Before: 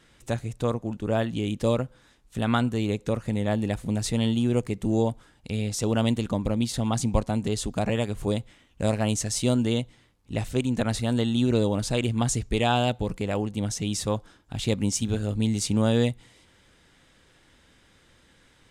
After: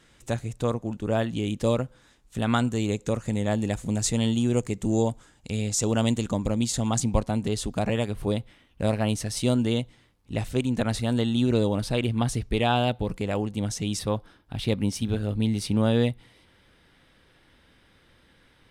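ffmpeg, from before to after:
-af "asetnsamples=n=441:p=0,asendcmd='2.49 equalizer g 9.5;7 equalizer g -2;8.11 equalizer g -10.5;9.37 equalizer g -3;11.82 equalizer g -12;13.1 equalizer g -2.5;13.99 equalizer g -14.5',equalizer=f=7100:t=o:w=0.47:g=2.5"

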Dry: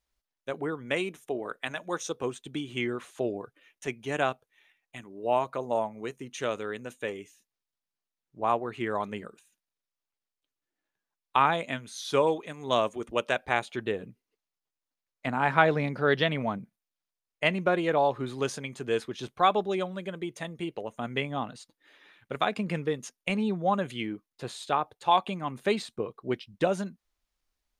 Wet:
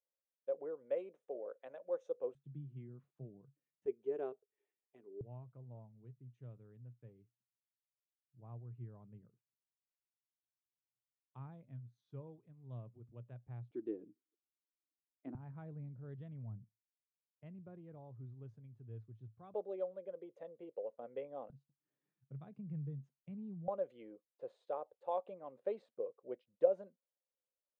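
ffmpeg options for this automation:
-af "asetnsamples=n=441:p=0,asendcmd='2.35 bandpass f 140;3.86 bandpass f 410;5.21 bandpass f 120;13.71 bandpass f 320;15.35 bandpass f 110;19.54 bandpass f 520;21.5 bandpass f 140;23.68 bandpass f 530',bandpass=f=530:t=q:w=8.9:csg=0"

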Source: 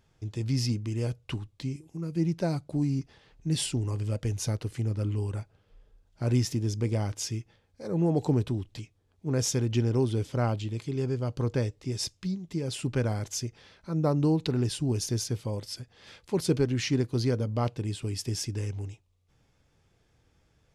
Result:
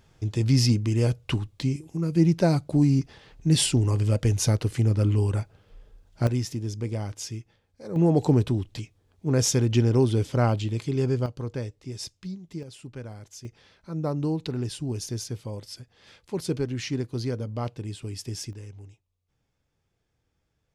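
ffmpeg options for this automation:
-af "asetnsamples=n=441:p=0,asendcmd='6.27 volume volume -2dB;7.96 volume volume 5dB;11.26 volume volume -4dB;12.63 volume volume -11dB;13.45 volume volume -2.5dB;18.53 volume volume -9dB',volume=2.37"

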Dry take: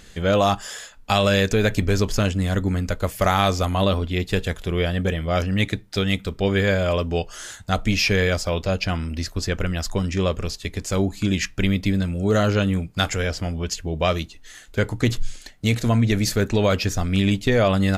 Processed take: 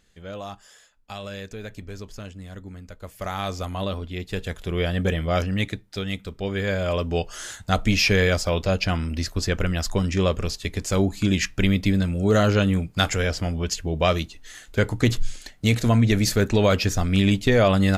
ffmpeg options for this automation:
-af "volume=2.51,afade=t=in:st=2.94:d=0.65:silence=0.354813,afade=t=in:st=4.27:d=0.92:silence=0.375837,afade=t=out:st=5.19:d=0.65:silence=0.421697,afade=t=in:st=6.54:d=0.83:silence=0.421697"

